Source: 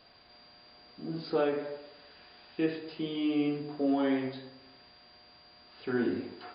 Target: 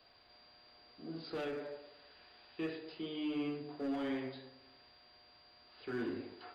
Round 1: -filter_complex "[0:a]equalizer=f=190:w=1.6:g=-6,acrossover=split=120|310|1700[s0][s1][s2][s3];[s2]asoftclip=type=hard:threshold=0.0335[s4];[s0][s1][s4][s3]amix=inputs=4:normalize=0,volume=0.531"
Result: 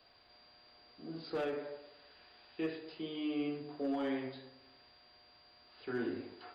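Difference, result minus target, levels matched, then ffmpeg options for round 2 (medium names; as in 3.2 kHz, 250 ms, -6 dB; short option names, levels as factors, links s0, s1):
hard clipper: distortion -7 dB
-filter_complex "[0:a]equalizer=f=190:w=1.6:g=-6,acrossover=split=120|310|1700[s0][s1][s2][s3];[s2]asoftclip=type=hard:threshold=0.0158[s4];[s0][s1][s4][s3]amix=inputs=4:normalize=0,volume=0.531"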